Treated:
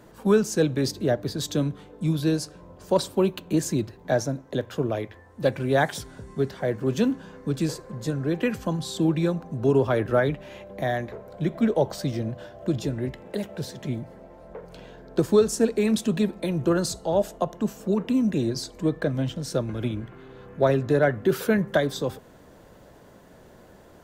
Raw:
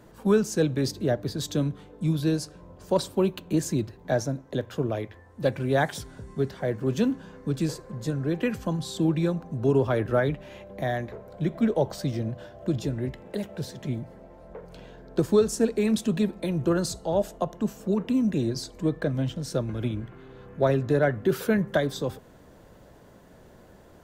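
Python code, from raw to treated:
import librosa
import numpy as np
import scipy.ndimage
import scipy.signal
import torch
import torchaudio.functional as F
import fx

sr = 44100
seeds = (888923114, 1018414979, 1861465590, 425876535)

y = fx.low_shelf(x, sr, hz=160.0, db=-4.0)
y = F.gain(torch.from_numpy(y), 2.5).numpy()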